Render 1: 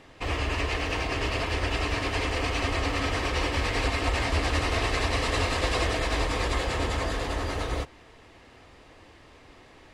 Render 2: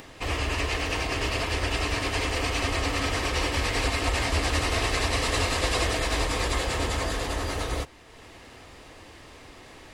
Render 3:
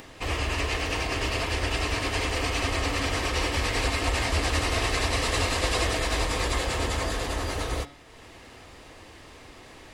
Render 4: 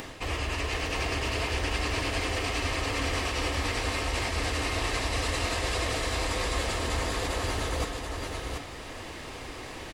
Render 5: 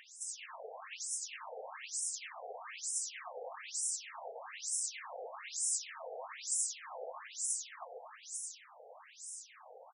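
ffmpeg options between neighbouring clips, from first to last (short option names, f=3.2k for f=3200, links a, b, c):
-af "highshelf=f=6.4k:g=10.5,acompressor=mode=upward:threshold=-40dB:ratio=2.5"
-af "bandreject=f=142:t=h:w=4,bandreject=f=284:t=h:w=4,bandreject=f=426:t=h:w=4,bandreject=f=568:t=h:w=4,bandreject=f=710:t=h:w=4,bandreject=f=852:t=h:w=4,bandreject=f=994:t=h:w=4,bandreject=f=1.136k:t=h:w=4,bandreject=f=1.278k:t=h:w=4,bandreject=f=1.42k:t=h:w=4,bandreject=f=1.562k:t=h:w=4,bandreject=f=1.704k:t=h:w=4,bandreject=f=1.846k:t=h:w=4,bandreject=f=1.988k:t=h:w=4,bandreject=f=2.13k:t=h:w=4,bandreject=f=2.272k:t=h:w=4,bandreject=f=2.414k:t=h:w=4,bandreject=f=2.556k:t=h:w=4,bandreject=f=2.698k:t=h:w=4,bandreject=f=2.84k:t=h:w=4,bandreject=f=2.982k:t=h:w=4,bandreject=f=3.124k:t=h:w=4,bandreject=f=3.266k:t=h:w=4,bandreject=f=3.408k:t=h:w=4,bandreject=f=3.55k:t=h:w=4,bandreject=f=3.692k:t=h:w=4,bandreject=f=3.834k:t=h:w=4,bandreject=f=3.976k:t=h:w=4,bandreject=f=4.118k:t=h:w=4,bandreject=f=4.26k:t=h:w=4,bandreject=f=4.402k:t=h:w=4,bandreject=f=4.544k:t=h:w=4,bandreject=f=4.686k:t=h:w=4,bandreject=f=4.828k:t=h:w=4,bandreject=f=4.97k:t=h:w=4,bandreject=f=5.112k:t=h:w=4,bandreject=f=5.254k:t=h:w=4,bandreject=f=5.396k:t=h:w=4,bandreject=f=5.538k:t=h:w=4,bandreject=f=5.68k:t=h:w=4"
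-af "areverse,acompressor=threshold=-34dB:ratio=6,areverse,aecho=1:1:734:0.596,volume=6dB"
-af "aexciter=amount=10.5:drive=8.5:freq=6.5k,tiltshelf=f=730:g=4,afftfilt=real='re*between(b*sr/1024,590*pow(7400/590,0.5+0.5*sin(2*PI*1.1*pts/sr))/1.41,590*pow(7400/590,0.5+0.5*sin(2*PI*1.1*pts/sr))*1.41)':imag='im*between(b*sr/1024,590*pow(7400/590,0.5+0.5*sin(2*PI*1.1*pts/sr))/1.41,590*pow(7400/590,0.5+0.5*sin(2*PI*1.1*pts/sr))*1.41)':win_size=1024:overlap=0.75,volume=-7.5dB"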